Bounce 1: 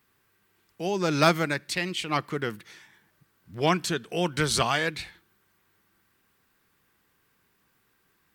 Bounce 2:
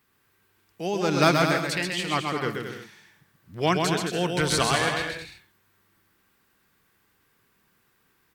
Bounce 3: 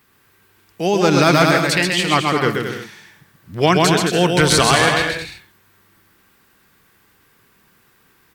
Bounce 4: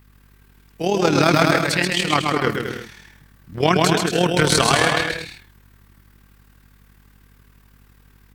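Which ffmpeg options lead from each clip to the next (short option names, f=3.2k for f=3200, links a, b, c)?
-af "aecho=1:1:130|221|284.7|329.3|360.5:0.631|0.398|0.251|0.158|0.1"
-af "alimiter=level_in=11.5dB:limit=-1dB:release=50:level=0:latency=1,volume=-1dB"
-af "aeval=exprs='val(0)+0.00398*(sin(2*PI*50*n/s)+sin(2*PI*2*50*n/s)/2+sin(2*PI*3*50*n/s)/3+sin(2*PI*4*50*n/s)/4+sin(2*PI*5*50*n/s)/5)':c=same,tremolo=f=38:d=0.621"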